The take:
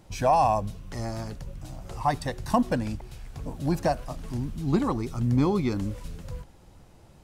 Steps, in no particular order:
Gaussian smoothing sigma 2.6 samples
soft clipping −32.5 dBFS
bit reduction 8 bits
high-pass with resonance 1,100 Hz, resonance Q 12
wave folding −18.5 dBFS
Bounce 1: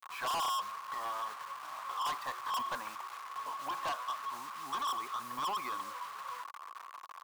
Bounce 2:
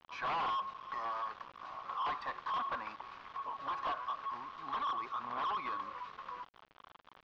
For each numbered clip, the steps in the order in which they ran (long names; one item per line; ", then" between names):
Gaussian smoothing, then bit reduction, then high-pass with resonance, then soft clipping, then wave folding
wave folding, then high-pass with resonance, then bit reduction, then soft clipping, then Gaussian smoothing